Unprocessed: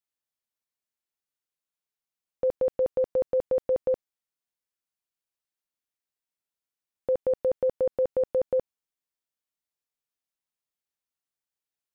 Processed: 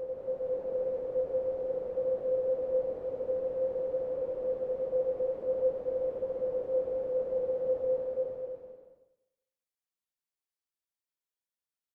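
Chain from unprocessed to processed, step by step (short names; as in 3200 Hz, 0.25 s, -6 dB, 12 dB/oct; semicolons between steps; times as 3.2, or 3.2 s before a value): Paulstretch 4.9×, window 0.50 s, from 6.98; feedback echo 0.201 s, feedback 33%, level -20 dB; gain -5 dB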